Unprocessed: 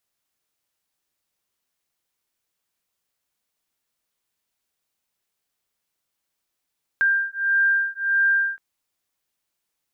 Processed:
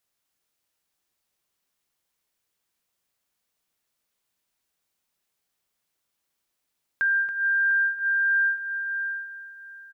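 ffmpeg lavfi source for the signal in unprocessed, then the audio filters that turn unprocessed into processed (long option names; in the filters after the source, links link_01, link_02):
-f lavfi -i "aevalsrc='0.0891*(sin(2*PI*1590*t)+sin(2*PI*1591.6*t))':duration=1.57:sample_rate=44100"
-filter_complex "[0:a]asplit=2[link_01][link_02];[link_02]adelay=700,lowpass=frequency=1700:poles=1,volume=-8.5dB,asplit=2[link_03][link_04];[link_04]adelay=700,lowpass=frequency=1700:poles=1,volume=0.25,asplit=2[link_05][link_06];[link_06]adelay=700,lowpass=frequency=1700:poles=1,volume=0.25[link_07];[link_03][link_05][link_07]amix=inputs=3:normalize=0[link_08];[link_01][link_08]amix=inputs=2:normalize=0,alimiter=limit=-19dB:level=0:latency=1,asplit=2[link_09][link_10];[link_10]aecho=0:1:279:0.335[link_11];[link_09][link_11]amix=inputs=2:normalize=0"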